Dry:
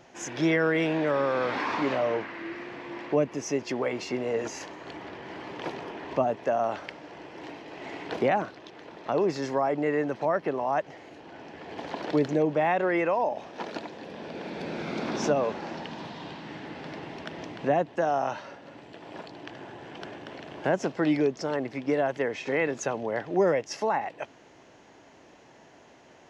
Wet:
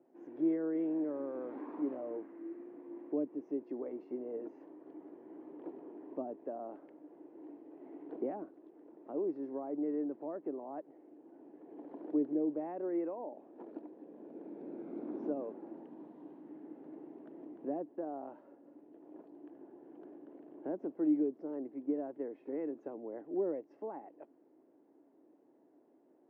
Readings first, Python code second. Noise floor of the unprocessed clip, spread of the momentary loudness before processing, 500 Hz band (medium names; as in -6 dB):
-54 dBFS, 17 LU, -13.0 dB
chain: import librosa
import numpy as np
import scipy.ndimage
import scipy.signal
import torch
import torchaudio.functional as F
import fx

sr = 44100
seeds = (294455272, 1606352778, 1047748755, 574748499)

y = fx.ladder_bandpass(x, sr, hz=340.0, resonance_pct=60)
y = F.gain(torch.from_numpy(y), -2.0).numpy()